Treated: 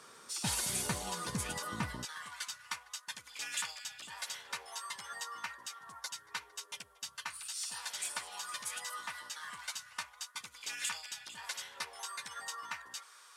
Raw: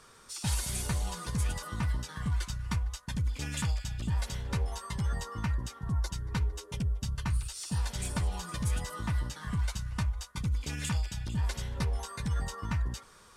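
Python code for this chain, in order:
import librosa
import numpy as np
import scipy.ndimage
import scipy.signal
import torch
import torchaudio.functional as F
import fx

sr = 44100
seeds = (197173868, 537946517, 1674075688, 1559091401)

y = fx.highpass(x, sr, hz=fx.steps((0.0, 210.0), (2.05, 1100.0)), slope=12)
y = y * 10.0 ** (1.5 / 20.0)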